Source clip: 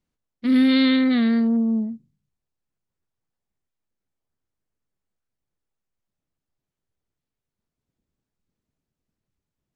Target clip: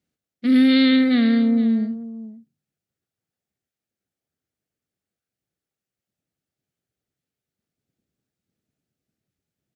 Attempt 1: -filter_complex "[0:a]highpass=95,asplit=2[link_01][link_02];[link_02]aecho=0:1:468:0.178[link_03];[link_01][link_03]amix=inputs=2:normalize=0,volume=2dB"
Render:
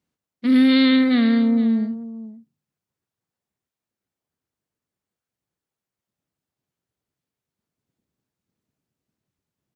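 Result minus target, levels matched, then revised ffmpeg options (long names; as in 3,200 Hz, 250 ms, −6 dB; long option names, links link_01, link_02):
1,000 Hz band +3.0 dB
-filter_complex "[0:a]highpass=95,equalizer=frequency=1000:width_type=o:width=0.32:gain=-12.5,asplit=2[link_01][link_02];[link_02]aecho=0:1:468:0.178[link_03];[link_01][link_03]amix=inputs=2:normalize=0,volume=2dB"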